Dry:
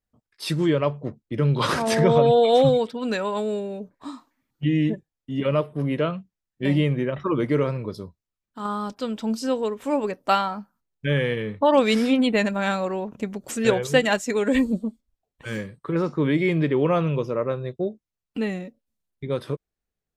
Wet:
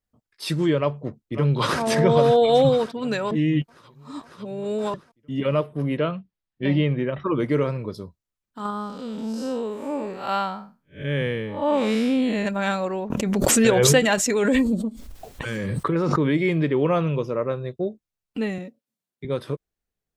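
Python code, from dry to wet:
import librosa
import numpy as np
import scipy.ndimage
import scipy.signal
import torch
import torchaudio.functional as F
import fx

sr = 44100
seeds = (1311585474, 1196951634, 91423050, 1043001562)

y = fx.echo_throw(x, sr, start_s=0.79, length_s=1.02, ms=550, feedback_pct=60, wet_db=-11.0)
y = fx.lowpass(y, sr, hz=4800.0, slope=24, at=(5.97, 7.38))
y = fx.spec_blur(y, sr, span_ms=168.0, at=(8.7, 12.46))
y = fx.pre_swell(y, sr, db_per_s=20.0, at=(13.1, 16.33))
y = fx.highpass(y, sr, hz=130.0, slope=24, at=(18.58, 19.25))
y = fx.edit(y, sr, fx.reverse_span(start_s=3.31, length_s=1.63), tone=tone)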